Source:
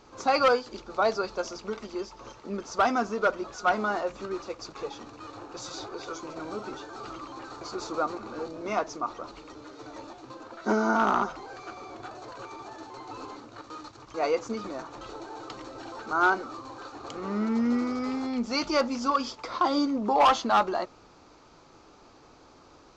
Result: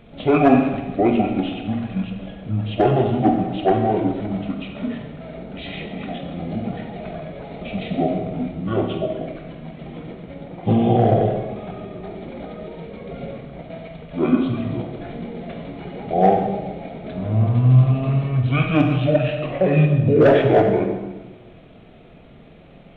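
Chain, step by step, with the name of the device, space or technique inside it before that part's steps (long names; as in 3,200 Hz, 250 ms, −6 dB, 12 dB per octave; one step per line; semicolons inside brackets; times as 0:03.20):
monster voice (pitch shifter −11 semitones; low-shelf EQ 230 Hz +4.5 dB; convolution reverb RT60 1.2 s, pre-delay 22 ms, DRR 3 dB)
level +5.5 dB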